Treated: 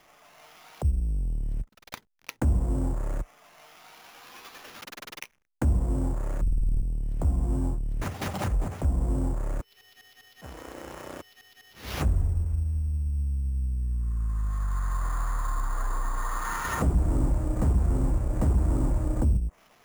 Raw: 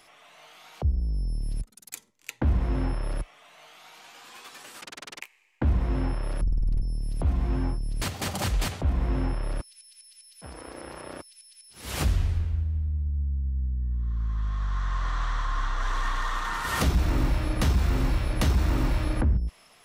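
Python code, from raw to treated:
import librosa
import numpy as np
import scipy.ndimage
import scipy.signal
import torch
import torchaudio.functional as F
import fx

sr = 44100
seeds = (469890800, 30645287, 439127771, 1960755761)

y = fx.backlash(x, sr, play_db=-52.0)
y = fx.env_lowpass_down(y, sr, base_hz=820.0, full_db=-22.0)
y = fx.sample_hold(y, sr, seeds[0], rate_hz=8300.0, jitter_pct=0)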